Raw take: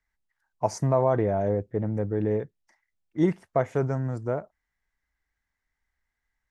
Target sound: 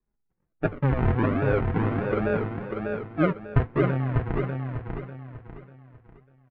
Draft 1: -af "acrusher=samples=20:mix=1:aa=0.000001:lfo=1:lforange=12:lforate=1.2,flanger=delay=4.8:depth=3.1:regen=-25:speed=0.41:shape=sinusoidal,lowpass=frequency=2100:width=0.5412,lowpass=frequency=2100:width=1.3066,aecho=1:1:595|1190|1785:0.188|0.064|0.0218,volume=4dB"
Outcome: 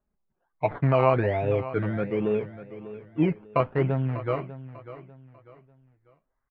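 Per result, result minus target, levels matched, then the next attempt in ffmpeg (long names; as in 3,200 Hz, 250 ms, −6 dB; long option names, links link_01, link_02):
sample-and-hold swept by an LFO: distortion −12 dB; echo-to-direct −10 dB
-af "acrusher=samples=61:mix=1:aa=0.000001:lfo=1:lforange=36.6:lforate=1.2,flanger=delay=4.8:depth=3.1:regen=-25:speed=0.41:shape=sinusoidal,lowpass=frequency=2100:width=0.5412,lowpass=frequency=2100:width=1.3066,aecho=1:1:595|1190|1785:0.188|0.064|0.0218,volume=4dB"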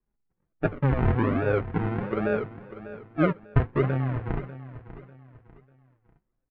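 echo-to-direct −10 dB
-af "acrusher=samples=61:mix=1:aa=0.000001:lfo=1:lforange=36.6:lforate=1.2,flanger=delay=4.8:depth=3.1:regen=-25:speed=0.41:shape=sinusoidal,lowpass=frequency=2100:width=0.5412,lowpass=frequency=2100:width=1.3066,aecho=1:1:595|1190|1785|2380:0.596|0.203|0.0689|0.0234,volume=4dB"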